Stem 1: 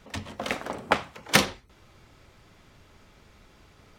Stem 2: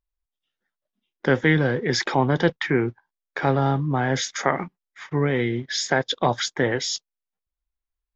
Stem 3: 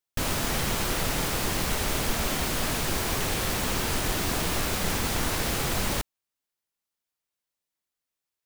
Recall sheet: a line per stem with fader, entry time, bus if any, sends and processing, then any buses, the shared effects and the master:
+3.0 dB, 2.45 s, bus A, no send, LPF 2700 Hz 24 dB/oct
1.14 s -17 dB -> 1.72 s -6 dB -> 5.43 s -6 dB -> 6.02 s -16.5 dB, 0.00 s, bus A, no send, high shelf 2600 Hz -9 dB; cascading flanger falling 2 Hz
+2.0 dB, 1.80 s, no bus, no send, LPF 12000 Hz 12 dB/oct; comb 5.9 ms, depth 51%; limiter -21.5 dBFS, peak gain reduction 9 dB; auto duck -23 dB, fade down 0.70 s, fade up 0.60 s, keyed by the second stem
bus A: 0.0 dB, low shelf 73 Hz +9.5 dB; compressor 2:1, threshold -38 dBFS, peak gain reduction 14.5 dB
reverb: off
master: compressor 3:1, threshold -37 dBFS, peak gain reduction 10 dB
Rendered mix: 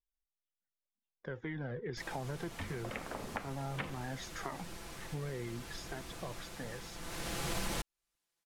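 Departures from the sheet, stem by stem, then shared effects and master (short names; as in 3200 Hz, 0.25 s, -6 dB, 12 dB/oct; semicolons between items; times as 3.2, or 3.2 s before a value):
stem 1 +3.0 dB -> -3.0 dB; stem 3: missing limiter -21.5 dBFS, peak gain reduction 9 dB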